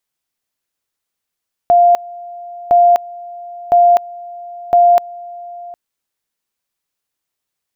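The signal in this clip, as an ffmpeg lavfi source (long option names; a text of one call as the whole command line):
ffmpeg -f lavfi -i "aevalsrc='pow(10,(-5.5-22*gte(mod(t,1.01),0.25))/20)*sin(2*PI*699*t)':duration=4.04:sample_rate=44100" out.wav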